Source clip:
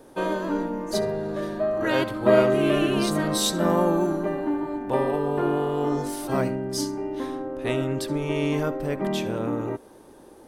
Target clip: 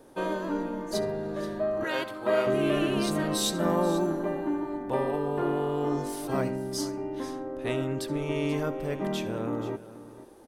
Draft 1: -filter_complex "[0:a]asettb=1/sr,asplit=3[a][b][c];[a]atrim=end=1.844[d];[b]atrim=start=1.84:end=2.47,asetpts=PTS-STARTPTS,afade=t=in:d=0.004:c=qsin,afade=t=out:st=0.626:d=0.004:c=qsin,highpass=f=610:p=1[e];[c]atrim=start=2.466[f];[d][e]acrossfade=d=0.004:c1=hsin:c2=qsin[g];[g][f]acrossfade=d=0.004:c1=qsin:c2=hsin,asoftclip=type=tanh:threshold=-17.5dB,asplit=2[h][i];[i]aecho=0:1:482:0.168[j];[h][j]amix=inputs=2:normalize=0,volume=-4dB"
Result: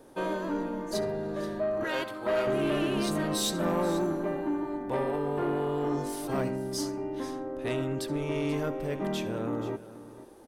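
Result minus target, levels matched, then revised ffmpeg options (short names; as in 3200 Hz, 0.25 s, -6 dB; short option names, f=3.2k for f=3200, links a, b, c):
soft clip: distortion +19 dB
-filter_complex "[0:a]asettb=1/sr,asplit=3[a][b][c];[a]atrim=end=1.844[d];[b]atrim=start=1.84:end=2.47,asetpts=PTS-STARTPTS,afade=t=in:d=0.004:c=qsin,afade=t=out:st=0.626:d=0.004:c=qsin,highpass=f=610:p=1[e];[c]atrim=start=2.466[f];[d][e]acrossfade=d=0.004:c1=hsin:c2=qsin[g];[g][f]acrossfade=d=0.004:c1=qsin:c2=hsin,asoftclip=type=tanh:threshold=-5.5dB,asplit=2[h][i];[i]aecho=0:1:482:0.168[j];[h][j]amix=inputs=2:normalize=0,volume=-4dB"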